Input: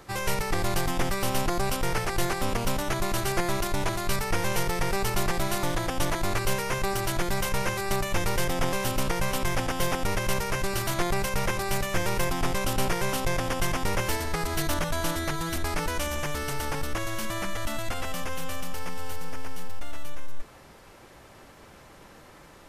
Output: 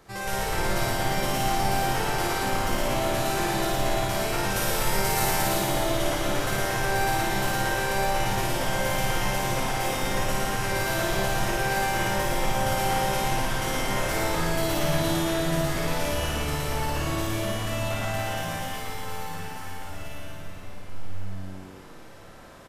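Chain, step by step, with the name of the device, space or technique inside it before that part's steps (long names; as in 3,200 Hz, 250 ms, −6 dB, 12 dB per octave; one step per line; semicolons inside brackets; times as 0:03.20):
0:04.50–0:05.52: high-shelf EQ 6,400 Hz +9 dB
tunnel (flutter between parallel walls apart 9.4 metres, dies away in 1.2 s; convolution reverb RT60 3.4 s, pre-delay 9 ms, DRR −4.5 dB)
echo with shifted repeats 131 ms, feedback 53%, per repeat +94 Hz, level −15.5 dB
level −6.5 dB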